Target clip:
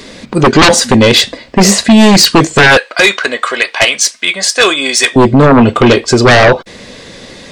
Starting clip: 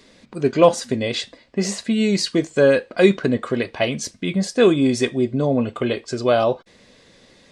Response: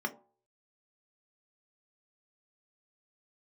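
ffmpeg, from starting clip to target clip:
-filter_complex "[0:a]asettb=1/sr,asplit=3[link_01][link_02][link_03];[link_01]atrim=end=2.774[link_04];[link_02]atrim=start=2.77:end=5.16,asetpts=PTS-STARTPTS,afade=type=in:duration=0.004:curve=qsin,afade=type=out:start_time=2.386:duration=0.004:curve=qsin,highpass=1100[link_05];[link_03]atrim=start=5.156[link_06];[link_04][link_05]acrossfade=duration=0.004:curve1=hsin:curve2=qsin[link_07];[link_07][link_06]acrossfade=duration=0.004:curve1=qsin:curve2=hsin,aeval=exprs='0.891*sin(PI/2*6.31*val(0)/0.891)':channel_layout=same"

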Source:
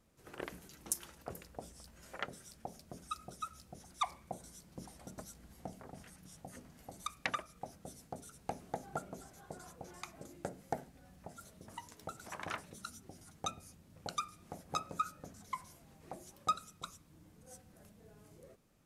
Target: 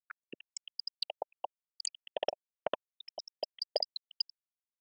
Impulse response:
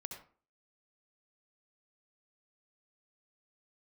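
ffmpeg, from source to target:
-filter_complex "[0:a]afftfilt=real='re*gte(hypot(re,im),0.0501)':imag='im*gte(hypot(re,im),0.0501)':win_size=1024:overlap=0.75,aexciter=amount=9.5:drive=5.2:freq=7200,acrossover=split=420|1000[link_01][link_02][link_03];[link_01]acompressor=threshold=-54dB:ratio=4[link_04];[link_02]acompressor=threshold=-41dB:ratio=4[link_05];[link_03]acompressor=threshold=-32dB:ratio=4[link_06];[link_04][link_05][link_06]amix=inputs=3:normalize=0,asubboost=boost=11.5:cutoff=200,tremolo=f=42:d=0.462,asetrate=172872,aresample=44100,highpass=150,equalizer=frequency=610:width_type=q:width=4:gain=5,equalizer=frequency=890:width_type=q:width=4:gain=6,equalizer=frequency=2100:width_type=q:width=4:gain=-10,lowpass=frequency=9200:width=0.5412,lowpass=frequency=9200:width=1.3066,volume=10.5dB"

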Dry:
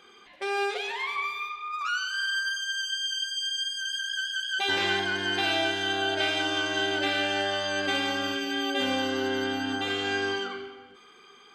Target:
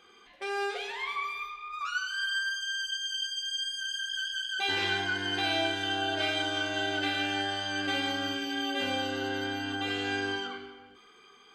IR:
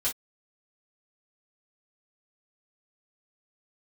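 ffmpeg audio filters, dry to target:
-filter_complex "[0:a]asplit=2[link_01][link_02];[1:a]atrim=start_sample=2205,lowshelf=frequency=130:gain=8.5[link_03];[link_02][link_03]afir=irnorm=-1:irlink=0,volume=-9.5dB[link_04];[link_01][link_04]amix=inputs=2:normalize=0,volume=-6.5dB"

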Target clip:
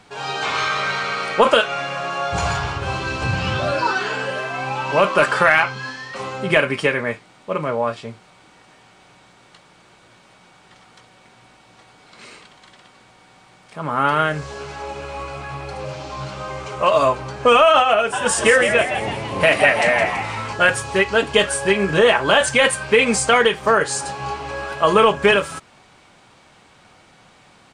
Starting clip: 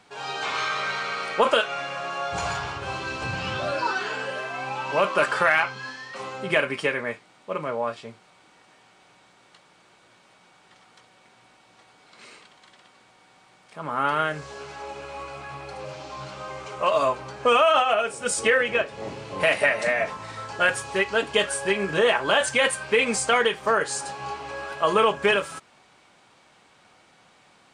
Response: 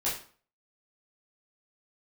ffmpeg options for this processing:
-filter_complex "[0:a]lowshelf=frequency=140:gain=10,asplit=3[link_01][link_02][link_03];[link_01]afade=type=out:start_time=18.12:duration=0.02[link_04];[link_02]asplit=7[link_05][link_06][link_07][link_08][link_09][link_10][link_11];[link_06]adelay=165,afreqshift=120,volume=-8dB[link_12];[link_07]adelay=330,afreqshift=240,volume=-13.4dB[link_13];[link_08]adelay=495,afreqshift=360,volume=-18.7dB[link_14];[link_09]adelay=660,afreqshift=480,volume=-24.1dB[link_15];[link_10]adelay=825,afreqshift=600,volume=-29.4dB[link_16];[link_11]adelay=990,afreqshift=720,volume=-34.8dB[link_17];[link_05][link_12][link_13][link_14][link_15][link_16][link_17]amix=inputs=7:normalize=0,afade=type=in:start_time=18.12:duration=0.02,afade=type=out:start_time=20.53:duration=0.02[link_18];[link_03]afade=type=in:start_time=20.53:duration=0.02[link_19];[link_04][link_18][link_19]amix=inputs=3:normalize=0,volume=5.5dB"

